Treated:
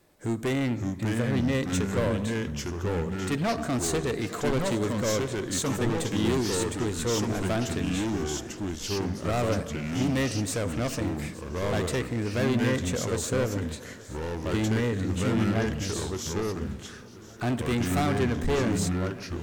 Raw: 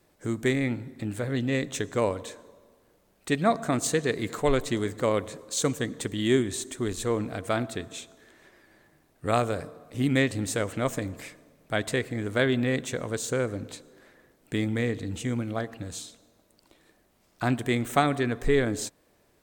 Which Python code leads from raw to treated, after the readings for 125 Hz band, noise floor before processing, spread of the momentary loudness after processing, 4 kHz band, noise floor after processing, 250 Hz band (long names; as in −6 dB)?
+3.5 dB, −65 dBFS, 7 LU, +1.5 dB, −42 dBFS, +2.0 dB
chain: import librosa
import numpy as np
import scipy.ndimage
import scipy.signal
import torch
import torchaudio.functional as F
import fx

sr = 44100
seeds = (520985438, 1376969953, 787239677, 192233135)

p1 = np.clip(10.0 ** (26.0 / 20.0) * x, -1.0, 1.0) / 10.0 ** (26.0 / 20.0)
p2 = fx.hpss(p1, sr, part='harmonic', gain_db=3)
p3 = p2 + fx.echo_feedback(p2, sr, ms=869, feedback_pct=48, wet_db=-19, dry=0)
y = fx.echo_pitch(p3, sr, ms=514, semitones=-3, count=2, db_per_echo=-3.0)